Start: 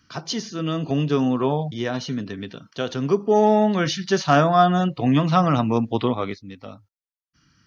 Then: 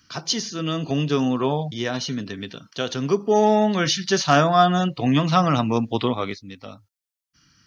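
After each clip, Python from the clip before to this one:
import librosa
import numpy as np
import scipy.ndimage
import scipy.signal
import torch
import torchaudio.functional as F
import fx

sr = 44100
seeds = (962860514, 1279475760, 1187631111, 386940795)

y = fx.high_shelf(x, sr, hz=2600.0, db=8.5)
y = y * 10.0 ** (-1.0 / 20.0)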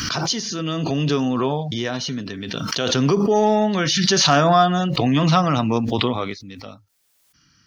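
y = fx.pre_swell(x, sr, db_per_s=22.0)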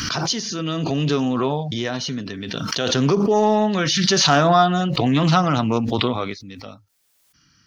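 y = fx.doppler_dist(x, sr, depth_ms=0.12)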